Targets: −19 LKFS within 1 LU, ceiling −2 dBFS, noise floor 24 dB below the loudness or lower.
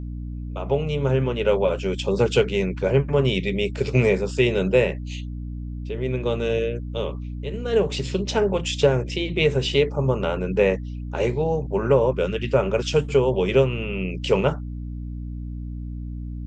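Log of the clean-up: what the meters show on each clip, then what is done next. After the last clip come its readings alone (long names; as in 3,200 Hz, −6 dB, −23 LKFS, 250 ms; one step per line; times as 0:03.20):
mains hum 60 Hz; hum harmonics up to 300 Hz; level of the hum −29 dBFS; integrated loudness −22.5 LKFS; sample peak −5.0 dBFS; target loudness −19.0 LKFS
→ hum removal 60 Hz, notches 5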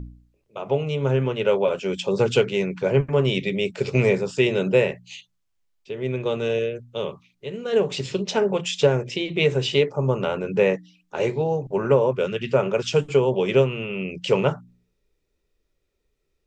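mains hum none found; integrated loudness −23.0 LKFS; sample peak −5.0 dBFS; target loudness −19.0 LKFS
→ level +4 dB
brickwall limiter −2 dBFS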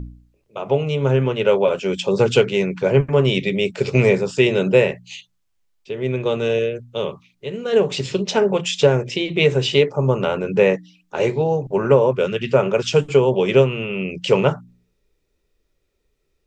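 integrated loudness −19.0 LKFS; sample peak −2.0 dBFS; background noise floor −69 dBFS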